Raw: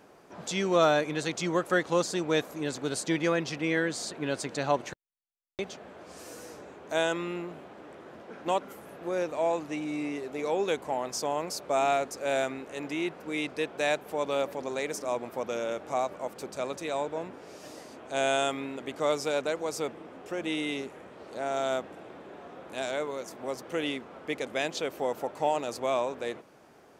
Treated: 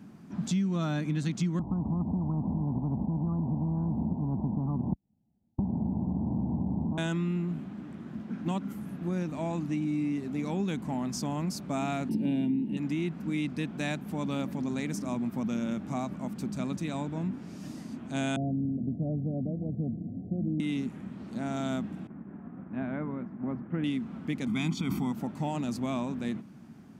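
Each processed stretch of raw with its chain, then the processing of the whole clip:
1.59–6.98 steep low-pass 850 Hz 72 dB/oct + spectral compressor 10:1
12.09–12.77 fixed phaser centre 3000 Hz, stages 4 + small resonant body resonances 210/300/890/2800 Hz, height 16 dB, ringing for 35 ms
18.36–20.6 rippled Chebyshev low-pass 730 Hz, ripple 3 dB + bell 100 Hz +14.5 dB 0.64 oct
22.07–23.84 LPF 1900 Hz 24 dB/oct + expander -43 dBFS
24.47–25.12 comb 0.9 ms, depth 89% + sustainer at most 47 dB/s
whole clip: HPF 56 Hz; resonant low shelf 320 Hz +14 dB, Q 3; compressor 6:1, threshold -23 dBFS; gain -3.5 dB

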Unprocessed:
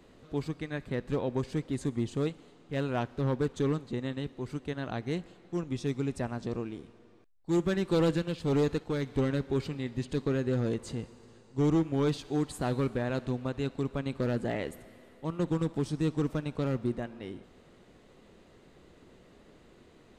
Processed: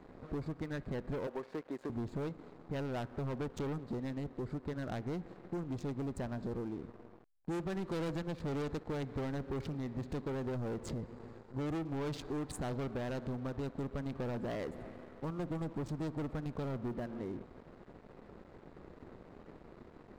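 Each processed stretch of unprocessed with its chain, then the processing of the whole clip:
1.27–1.9 HPF 520 Hz + high shelf 4600 Hz -10 dB
whole clip: Wiener smoothing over 15 samples; sample leveller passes 3; compressor 4:1, threshold -33 dBFS; gain -4.5 dB

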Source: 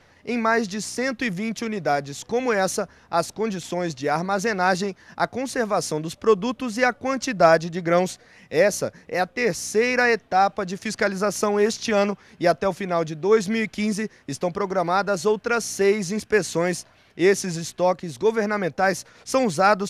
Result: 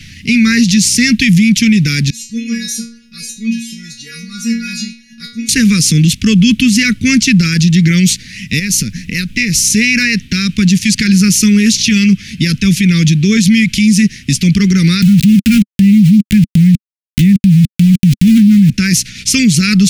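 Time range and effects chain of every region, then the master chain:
2.1–5.49 notch 3300 Hz, Q 7.8 + metallic resonator 230 Hz, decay 0.58 s, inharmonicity 0.002
8.58–9.75 compressor 4:1, threshold -30 dBFS + added noise brown -60 dBFS
15.02–18.7 steep low-pass 3700 Hz + resonant low shelf 300 Hz +13 dB, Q 3 + sample gate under -21.5 dBFS
whole clip: Chebyshev band-stop 210–2400 Hz, order 3; bell 570 Hz +12 dB 0.88 oct; maximiser +27 dB; gain -1 dB

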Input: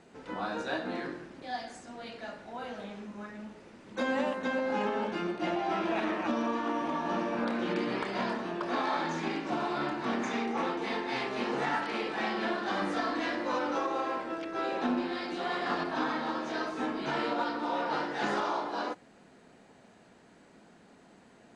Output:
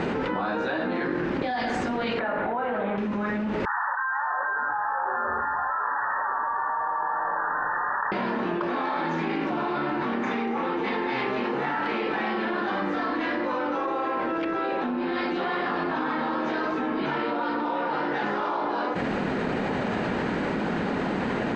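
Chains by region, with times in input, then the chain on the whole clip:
2.19–2.98 LPF 1600 Hz + low shelf 310 Hz -11 dB
3.65–8.12 brick-wall FIR band-pass 810–1900 Hz + frequency-shifting echo 0.11 s, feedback 54%, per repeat -150 Hz, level -8 dB
whole clip: LPF 2800 Hz 12 dB/oct; notch 680 Hz, Q 12; fast leveller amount 100%

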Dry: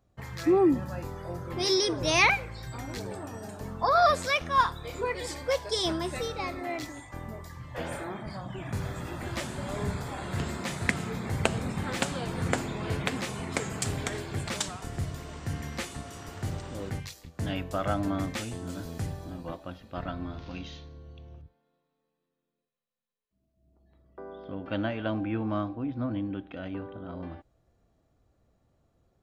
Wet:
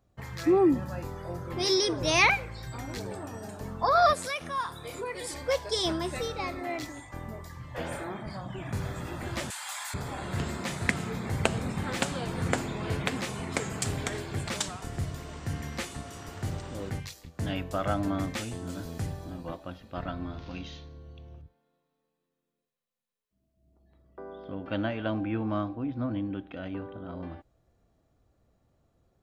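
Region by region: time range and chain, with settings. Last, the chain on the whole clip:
4.13–5.34 bell 10000 Hz +14 dB 0.37 oct + compressor 2:1, threshold -34 dBFS + HPF 110 Hz
9.5–9.94 elliptic high-pass 780 Hz, stop band 50 dB + tilt +4 dB/oct
whole clip: dry

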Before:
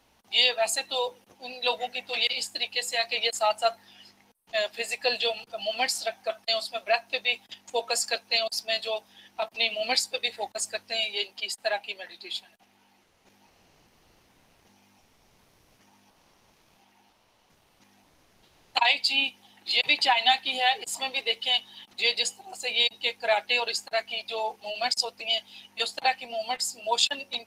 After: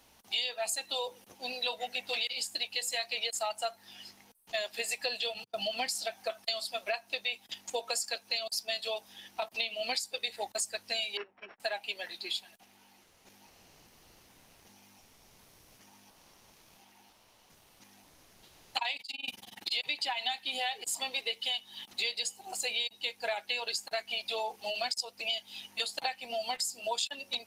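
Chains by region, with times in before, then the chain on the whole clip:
5.34–6.06 notches 50/100 Hz + gate -45 dBFS, range -30 dB + bell 120 Hz +8.5 dB 2.1 oct
11.17–11.6 sample sorter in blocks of 8 samples + LPF 1900 Hz 24 dB/oct + upward expander, over -52 dBFS
18.96–19.72 negative-ratio compressor -35 dBFS + AM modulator 21 Hz, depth 95%
whole clip: high shelf 5200 Hz +8.5 dB; compressor 6:1, threshold -31 dBFS

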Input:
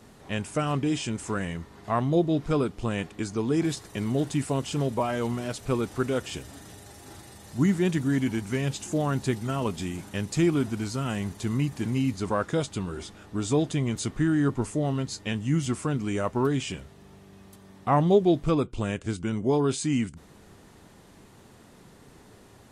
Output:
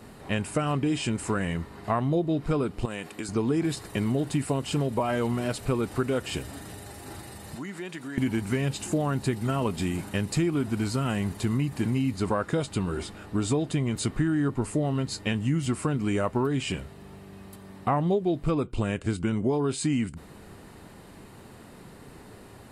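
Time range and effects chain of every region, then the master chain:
2.85–3.29 HPF 290 Hz 6 dB/oct + high shelf 6400 Hz +8.5 dB + compressor 5:1, threshold -35 dBFS
7.55–8.18 weighting filter A + compressor 3:1, threshold -41 dBFS
whole clip: bell 6100 Hz -8.5 dB 0.42 oct; notch 3400 Hz, Q 13; compressor 6:1, threshold -27 dBFS; gain +5 dB

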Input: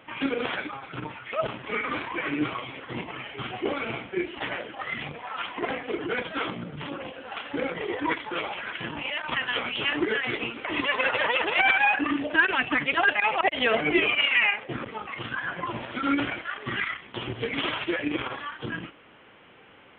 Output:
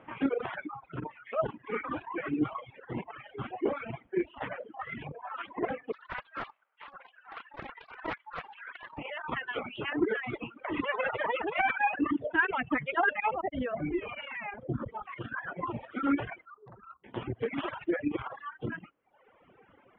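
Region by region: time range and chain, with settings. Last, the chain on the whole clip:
5.92–8.98 HPF 940 Hz 24 dB/oct + air absorption 59 m + Doppler distortion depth 0.47 ms
13.34–15.03 tilt -3 dB/oct + compressor 4:1, threshold -26 dBFS + notch 440 Hz, Q 11
16.45–17.04 rippled Chebyshev low-pass 1400 Hz, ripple 3 dB + bell 490 Hz -6.5 dB 2.9 oct + core saturation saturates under 1800 Hz
whole clip: reverb removal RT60 1 s; Bessel low-pass 1200 Hz, order 2; reverb removal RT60 1.2 s

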